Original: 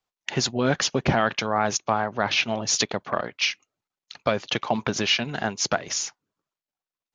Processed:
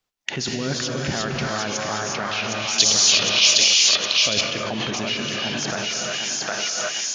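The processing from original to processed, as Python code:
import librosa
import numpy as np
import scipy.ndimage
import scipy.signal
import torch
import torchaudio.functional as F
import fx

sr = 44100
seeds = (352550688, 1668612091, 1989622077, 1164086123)

p1 = fx.peak_eq(x, sr, hz=840.0, db=-6.0, octaves=1.2)
p2 = p1 + fx.echo_thinned(p1, sr, ms=761, feedback_pct=33, hz=610.0, wet_db=-3.0, dry=0)
p3 = fx.rev_gated(p2, sr, seeds[0], gate_ms=390, shape='rising', drr_db=0.0)
p4 = fx.over_compress(p3, sr, threshold_db=-30.0, ratio=-0.5)
p5 = p3 + F.gain(torch.from_numpy(p4), 1.5).numpy()
p6 = fx.high_shelf_res(p5, sr, hz=2400.0, db=10.5, q=1.5, at=(2.78, 4.41))
y = F.gain(torch.from_numpy(p6), -5.0).numpy()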